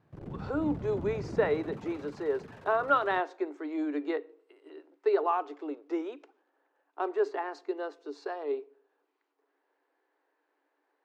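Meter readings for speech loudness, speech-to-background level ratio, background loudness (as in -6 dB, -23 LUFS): -32.0 LUFS, 10.5 dB, -42.5 LUFS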